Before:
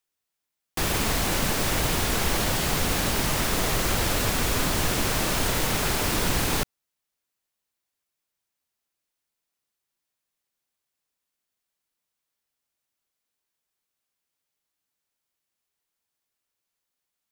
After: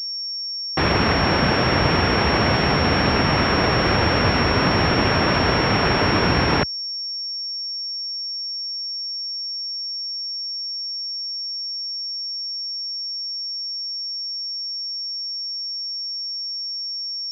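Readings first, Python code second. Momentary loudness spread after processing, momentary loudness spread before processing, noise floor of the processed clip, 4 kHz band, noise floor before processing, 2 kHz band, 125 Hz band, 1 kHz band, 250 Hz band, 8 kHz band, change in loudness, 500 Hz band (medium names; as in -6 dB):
7 LU, 1 LU, -29 dBFS, +10.0 dB, -84 dBFS, +8.0 dB, +8.0 dB, +9.0 dB, +9.0 dB, under -15 dB, +3.0 dB, +9.0 dB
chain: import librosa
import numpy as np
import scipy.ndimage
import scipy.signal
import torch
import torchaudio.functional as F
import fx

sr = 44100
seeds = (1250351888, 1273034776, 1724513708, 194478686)

y = scipy.signal.sosfilt(scipy.signal.butter(4, 64.0, 'highpass', fs=sr, output='sos'), x)
y = fx.pwm(y, sr, carrier_hz=5500.0)
y = F.gain(torch.from_numpy(y), 8.5).numpy()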